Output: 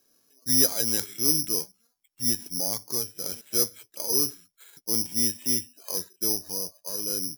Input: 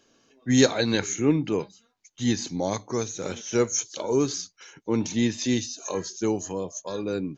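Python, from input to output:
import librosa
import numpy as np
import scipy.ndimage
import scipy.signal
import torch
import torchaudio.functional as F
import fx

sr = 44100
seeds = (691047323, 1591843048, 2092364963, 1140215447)

p1 = 10.0 ** (-15.5 / 20.0) * np.tanh(x / 10.0 ** (-15.5 / 20.0))
p2 = x + (p1 * librosa.db_to_amplitude(-3.0))
p3 = (np.kron(scipy.signal.resample_poly(p2, 1, 8), np.eye(8)[0]) * 8)[:len(p2)]
y = p3 * librosa.db_to_amplitude(-14.5)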